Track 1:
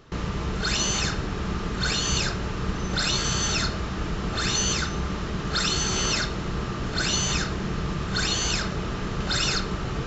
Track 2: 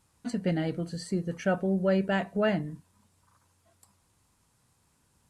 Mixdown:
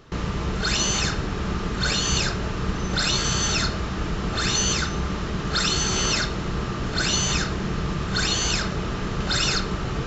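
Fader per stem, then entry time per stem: +2.0 dB, -18.0 dB; 0.00 s, 0.00 s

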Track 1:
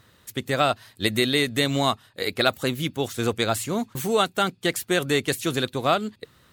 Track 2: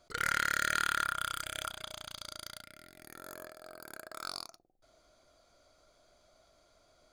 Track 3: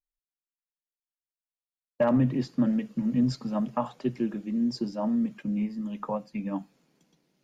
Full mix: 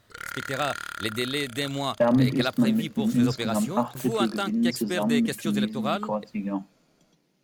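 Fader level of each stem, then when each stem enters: -6.5 dB, -4.5 dB, +2.5 dB; 0.00 s, 0.00 s, 0.00 s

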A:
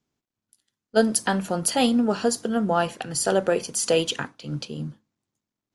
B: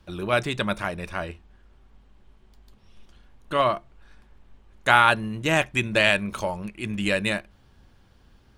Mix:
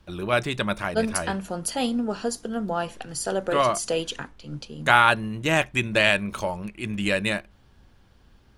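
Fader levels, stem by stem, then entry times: -5.0 dB, 0.0 dB; 0.00 s, 0.00 s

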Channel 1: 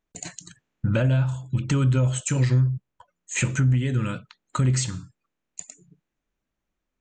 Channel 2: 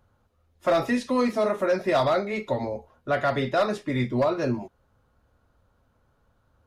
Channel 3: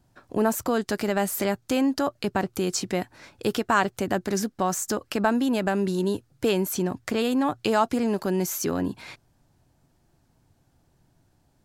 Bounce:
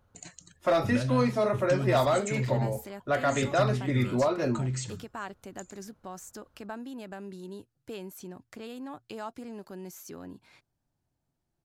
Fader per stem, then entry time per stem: -10.0 dB, -2.5 dB, -17.0 dB; 0.00 s, 0.00 s, 1.45 s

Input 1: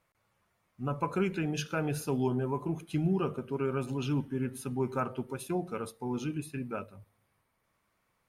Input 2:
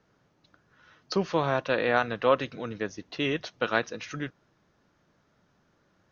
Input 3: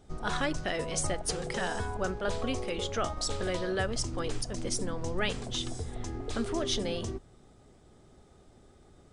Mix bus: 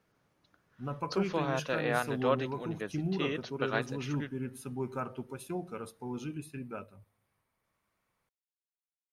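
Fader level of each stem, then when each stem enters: -4.5 dB, -6.5 dB, mute; 0.00 s, 0.00 s, mute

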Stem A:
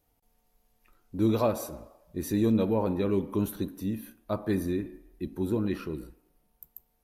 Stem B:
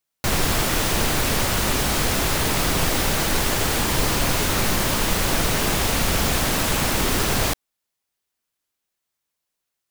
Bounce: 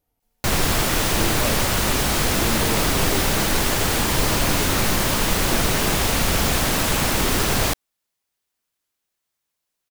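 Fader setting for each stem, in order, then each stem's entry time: -3.5 dB, +1.0 dB; 0.00 s, 0.20 s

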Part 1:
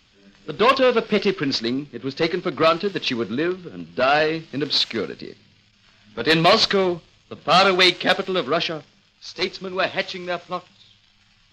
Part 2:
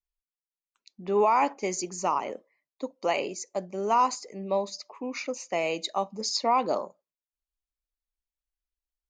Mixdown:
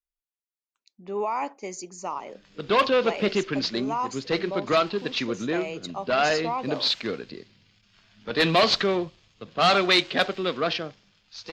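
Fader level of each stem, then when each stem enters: -4.5 dB, -5.5 dB; 2.10 s, 0.00 s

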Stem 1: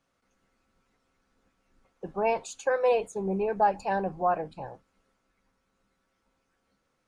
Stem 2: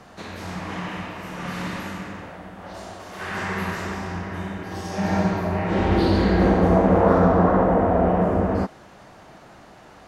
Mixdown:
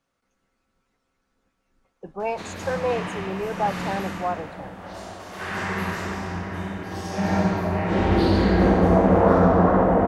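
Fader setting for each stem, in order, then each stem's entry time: -1.0 dB, 0.0 dB; 0.00 s, 2.20 s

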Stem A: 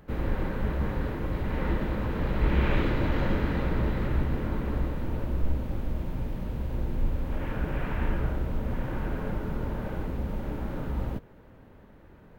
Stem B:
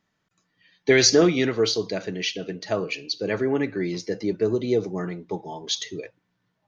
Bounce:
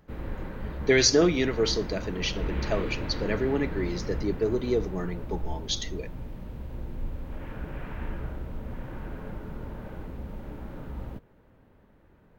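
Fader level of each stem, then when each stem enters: -6.5 dB, -3.5 dB; 0.00 s, 0.00 s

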